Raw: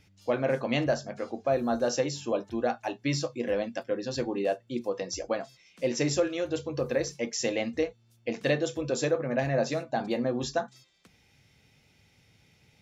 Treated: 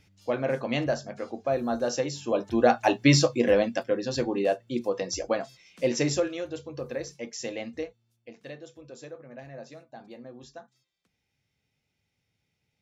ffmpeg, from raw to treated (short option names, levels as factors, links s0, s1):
-af "volume=3.55,afade=t=in:st=2.23:d=0.7:silence=0.266073,afade=t=out:st=2.93:d=1.07:silence=0.398107,afade=t=out:st=5.88:d=0.67:silence=0.375837,afade=t=out:st=7.78:d=0.56:silence=0.298538"